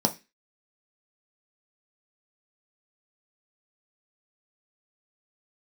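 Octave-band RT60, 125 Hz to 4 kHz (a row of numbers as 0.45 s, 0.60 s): 0.30 s, 0.30 s, 0.25 s, 0.20 s, 0.35 s, 0.30 s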